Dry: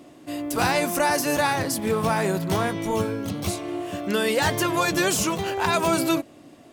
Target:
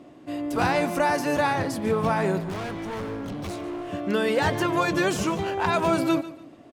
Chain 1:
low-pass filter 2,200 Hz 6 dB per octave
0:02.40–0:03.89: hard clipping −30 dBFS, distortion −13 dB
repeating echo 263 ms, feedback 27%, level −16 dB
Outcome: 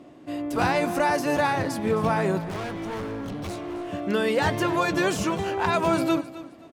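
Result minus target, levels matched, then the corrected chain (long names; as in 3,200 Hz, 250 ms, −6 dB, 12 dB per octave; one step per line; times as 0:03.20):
echo 119 ms late
low-pass filter 2,200 Hz 6 dB per octave
0:02.40–0:03.89: hard clipping −30 dBFS, distortion −13 dB
repeating echo 144 ms, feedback 27%, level −16 dB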